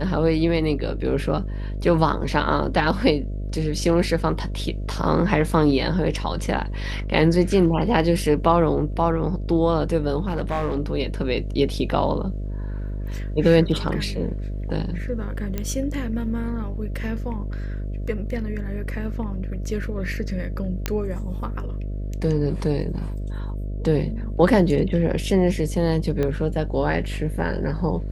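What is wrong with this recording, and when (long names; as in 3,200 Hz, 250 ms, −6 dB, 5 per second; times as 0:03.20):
mains buzz 50 Hz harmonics 13 −28 dBFS
0:10.28–0:10.79: clipping −19 dBFS
0:15.58: click −13 dBFS
0:20.86: click −8 dBFS
0:26.23: click −13 dBFS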